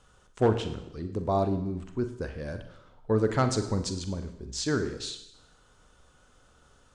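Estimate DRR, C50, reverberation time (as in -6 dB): 7.5 dB, 10.0 dB, 0.80 s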